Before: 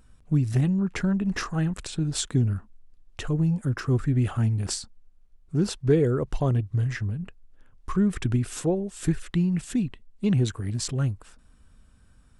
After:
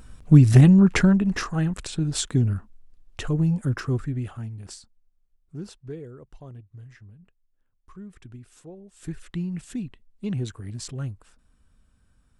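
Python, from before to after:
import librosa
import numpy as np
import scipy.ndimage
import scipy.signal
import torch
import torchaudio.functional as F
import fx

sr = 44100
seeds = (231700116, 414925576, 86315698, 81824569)

y = fx.gain(x, sr, db=fx.line((0.95, 10.0), (1.35, 1.5), (3.74, 1.5), (4.48, -11.5), (5.55, -11.5), (6.12, -19.0), (8.7, -19.0), (9.25, -6.0)))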